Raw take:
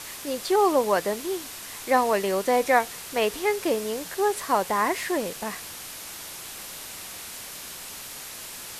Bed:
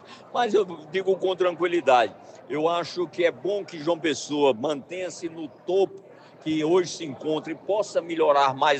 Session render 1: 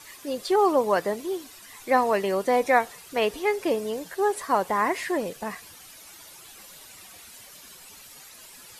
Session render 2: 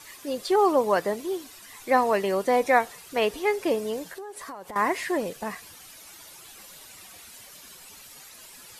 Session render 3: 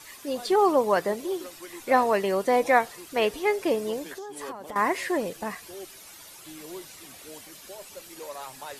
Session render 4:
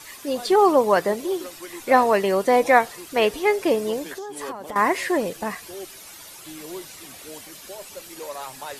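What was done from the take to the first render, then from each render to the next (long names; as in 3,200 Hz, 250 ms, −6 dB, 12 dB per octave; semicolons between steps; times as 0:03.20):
broadband denoise 12 dB, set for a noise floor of −39 dBFS
0:04.06–0:04.76: downward compressor 12 to 1, threshold −35 dBFS
mix in bed −20 dB
level +4.5 dB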